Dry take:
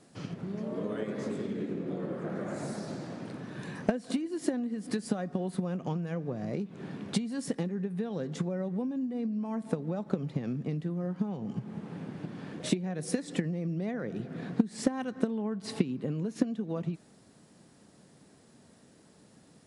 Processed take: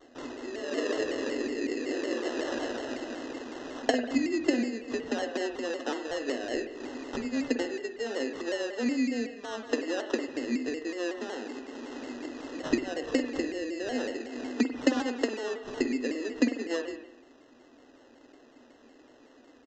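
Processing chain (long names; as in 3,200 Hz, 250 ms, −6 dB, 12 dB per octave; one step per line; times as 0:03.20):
Chebyshev high-pass filter 240 Hz, order 10
high-shelf EQ 2,500 Hz −10.5 dB
in parallel at −2 dB: speech leveller within 4 dB 2 s
on the sum: sample-rate reduction 2,300 Hz, jitter 0%
on a send at −6.5 dB: convolution reverb RT60 0.85 s, pre-delay 48 ms
on the sum: downsampling to 16,000 Hz
pitch modulation by a square or saw wave saw down 5.4 Hz, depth 100 cents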